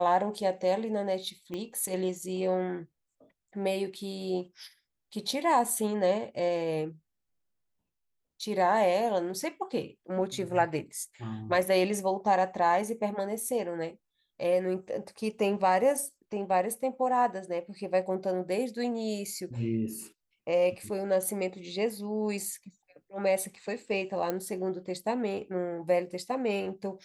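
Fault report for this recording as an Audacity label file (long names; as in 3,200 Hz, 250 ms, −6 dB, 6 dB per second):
1.540000	1.540000	click −24 dBFS
24.300000	24.300000	click −17 dBFS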